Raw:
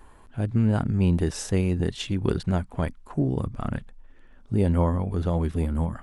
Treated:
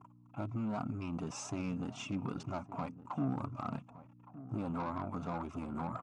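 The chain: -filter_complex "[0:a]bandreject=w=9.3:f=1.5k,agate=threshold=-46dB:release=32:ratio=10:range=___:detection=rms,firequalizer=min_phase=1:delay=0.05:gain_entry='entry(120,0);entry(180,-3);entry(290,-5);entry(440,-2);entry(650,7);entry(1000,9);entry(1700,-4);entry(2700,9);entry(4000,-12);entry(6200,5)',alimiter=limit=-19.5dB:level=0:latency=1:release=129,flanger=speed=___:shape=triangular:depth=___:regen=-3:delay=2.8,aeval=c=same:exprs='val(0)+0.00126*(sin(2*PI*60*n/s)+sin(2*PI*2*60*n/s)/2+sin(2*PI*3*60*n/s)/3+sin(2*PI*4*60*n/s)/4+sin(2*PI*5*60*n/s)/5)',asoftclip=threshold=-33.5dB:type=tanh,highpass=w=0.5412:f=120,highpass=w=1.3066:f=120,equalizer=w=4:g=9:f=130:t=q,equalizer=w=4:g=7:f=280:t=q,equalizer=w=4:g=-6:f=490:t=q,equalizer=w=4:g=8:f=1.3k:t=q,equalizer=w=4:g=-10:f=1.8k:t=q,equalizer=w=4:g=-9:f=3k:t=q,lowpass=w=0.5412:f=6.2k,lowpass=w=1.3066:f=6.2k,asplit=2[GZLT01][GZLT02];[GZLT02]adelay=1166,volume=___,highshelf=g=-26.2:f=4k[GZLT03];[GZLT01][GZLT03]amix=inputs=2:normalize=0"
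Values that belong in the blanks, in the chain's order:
-33dB, 2, 1.7, -15dB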